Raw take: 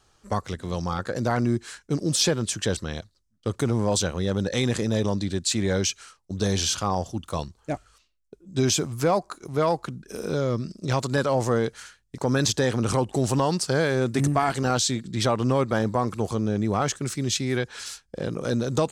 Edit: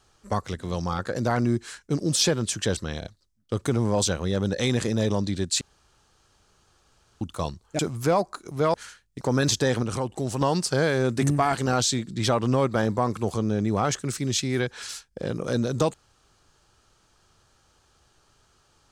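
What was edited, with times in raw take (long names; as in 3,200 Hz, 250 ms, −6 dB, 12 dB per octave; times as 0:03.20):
0:02.99: stutter 0.03 s, 3 plays
0:05.55–0:07.15: fill with room tone
0:07.73–0:08.76: remove
0:09.71–0:11.71: remove
0:12.80–0:13.38: clip gain −5 dB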